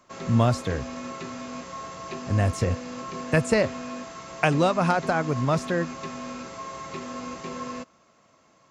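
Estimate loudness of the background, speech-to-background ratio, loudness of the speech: -36.0 LUFS, 11.0 dB, -25.0 LUFS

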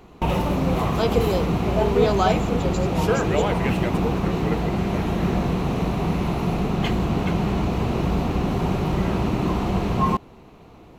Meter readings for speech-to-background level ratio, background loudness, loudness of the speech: -3.5 dB, -23.5 LUFS, -27.0 LUFS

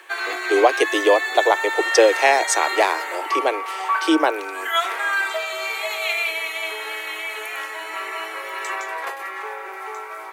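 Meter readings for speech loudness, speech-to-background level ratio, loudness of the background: -19.5 LUFS, 5.5 dB, -25.0 LUFS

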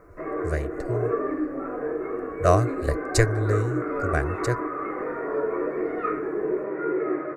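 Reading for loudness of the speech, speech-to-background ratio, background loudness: -26.5 LUFS, 2.5 dB, -29.0 LUFS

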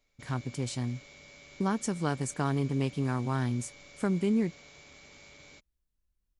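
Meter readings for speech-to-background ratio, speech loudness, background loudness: 20.0 dB, -31.5 LUFS, -51.5 LUFS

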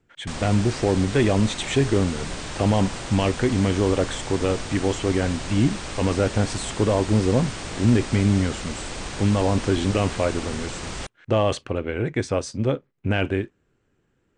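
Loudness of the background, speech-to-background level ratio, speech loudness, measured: -33.0 LUFS, 9.5 dB, -23.5 LUFS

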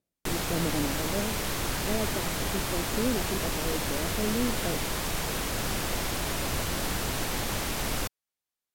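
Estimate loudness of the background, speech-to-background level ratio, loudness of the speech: -30.5 LUFS, -4.0 dB, -34.5 LUFS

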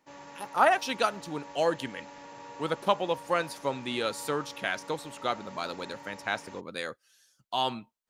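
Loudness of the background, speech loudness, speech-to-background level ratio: -46.5 LUFS, -31.0 LUFS, 15.5 dB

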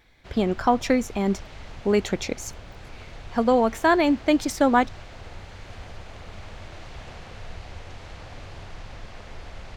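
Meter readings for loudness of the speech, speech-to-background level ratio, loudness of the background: -23.0 LUFS, 20.0 dB, -43.0 LUFS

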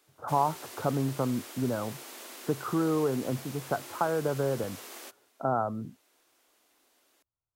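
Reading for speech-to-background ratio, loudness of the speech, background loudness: 12.5 dB, -31.0 LUFS, -43.5 LUFS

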